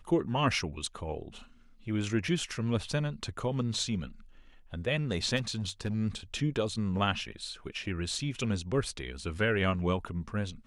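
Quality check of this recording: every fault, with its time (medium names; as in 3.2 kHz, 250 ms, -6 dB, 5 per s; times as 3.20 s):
5.36–5.94 s: clipped -27 dBFS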